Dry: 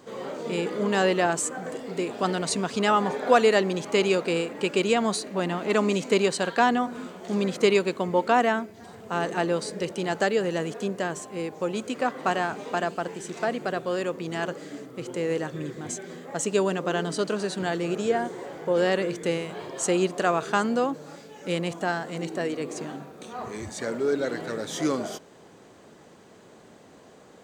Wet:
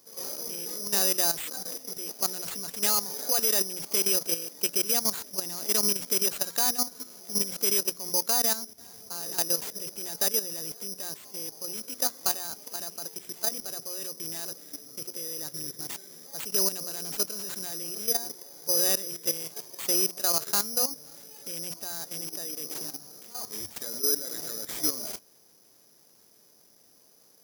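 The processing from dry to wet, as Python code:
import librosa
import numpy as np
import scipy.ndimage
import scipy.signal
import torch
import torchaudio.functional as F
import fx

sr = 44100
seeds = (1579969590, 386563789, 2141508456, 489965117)

y = fx.hum_notches(x, sr, base_hz=60, count=4)
y = fx.level_steps(y, sr, step_db=12)
y = (np.kron(y[::8], np.eye(8)[0]) * 8)[:len(y)]
y = y * librosa.db_to_amplitude(-8.5)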